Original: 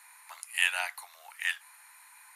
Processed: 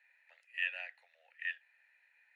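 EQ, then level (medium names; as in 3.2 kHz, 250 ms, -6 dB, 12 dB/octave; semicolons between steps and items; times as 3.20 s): vowel filter e; distance through air 81 m; peaking EQ 2.3 kHz +2.5 dB 0.77 oct; 0.0 dB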